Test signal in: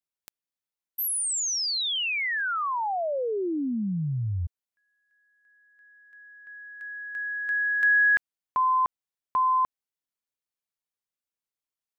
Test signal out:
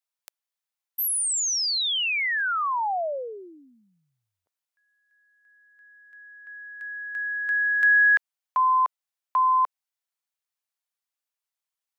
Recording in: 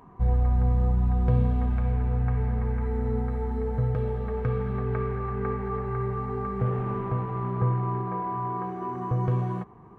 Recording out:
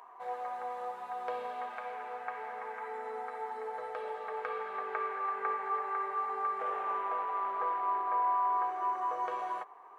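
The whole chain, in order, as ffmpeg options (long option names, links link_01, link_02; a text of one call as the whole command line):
ffmpeg -i in.wav -af "highpass=frequency=600:width=0.5412,highpass=frequency=600:width=1.3066,volume=2.5dB" out.wav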